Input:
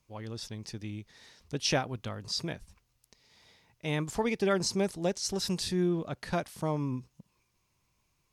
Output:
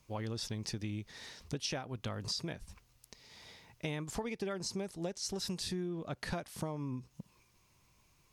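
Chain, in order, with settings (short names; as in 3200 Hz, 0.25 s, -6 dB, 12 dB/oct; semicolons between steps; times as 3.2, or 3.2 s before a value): compressor 10:1, threshold -41 dBFS, peak gain reduction 18.5 dB; gain +6 dB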